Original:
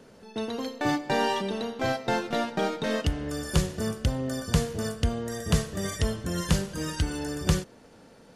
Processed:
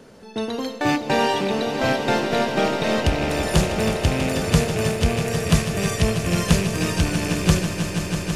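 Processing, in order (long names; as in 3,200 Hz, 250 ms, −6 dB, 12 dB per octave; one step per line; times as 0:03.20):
loose part that buzzes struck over −33 dBFS, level −26 dBFS
echo that builds up and dies away 162 ms, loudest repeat 5, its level −11 dB
level +5.5 dB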